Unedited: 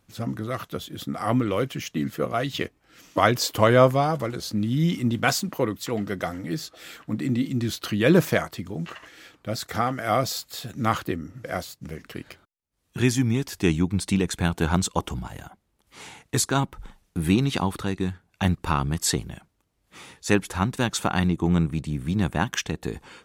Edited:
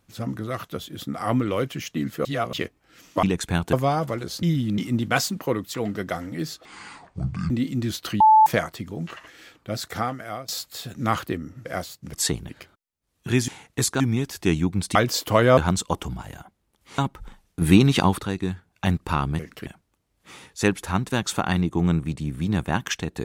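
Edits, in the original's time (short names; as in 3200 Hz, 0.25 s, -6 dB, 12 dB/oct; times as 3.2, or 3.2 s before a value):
2.25–2.53 reverse
3.23–3.85 swap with 14.13–14.63
4.55–4.9 reverse
6.77–7.29 speed 61%
7.99–8.25 bleep 871 Hz -10 dBFS
9.7–10.27 fade out, to -23.5 dB
11.92–12.19 swap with 18.97–19.33
16.04–16.56 move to 13.18
17.19–17.75 gain +5.5 dB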